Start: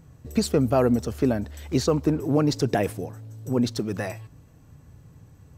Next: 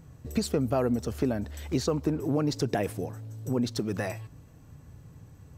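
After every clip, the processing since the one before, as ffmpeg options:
-af "acompressor=threshold=0.0447:ratio=2"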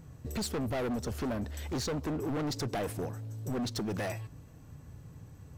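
-af "volume=33.5,asoftclip=hard,volume=0.0299"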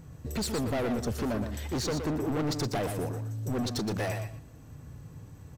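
-af "aecho=1:1:119|238|357:0.422|0.0759|0.0137,volume=1.33"

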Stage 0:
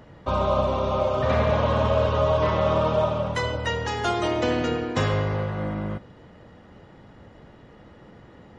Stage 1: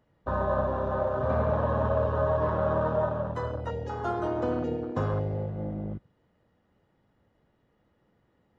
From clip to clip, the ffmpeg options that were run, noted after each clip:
-af "afwtdn=0.0562,volume=0.596"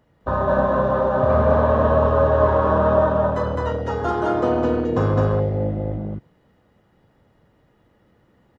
-af "aecho=1:1:37.9|209.9:0.282|0.891,volume=2.24"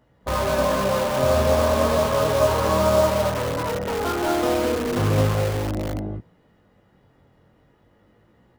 -filter_complex "[0:a]flanger=delay=16:depth=6.8:speed=0.34,asplit=2[s0][s1];[s1]aeval=exprs='(mod(14.1*val(0)+1,2)-1)/14.1':c=same,volume=0.562[s2];[s0][s2]amix=inputs=2:normalize=0"

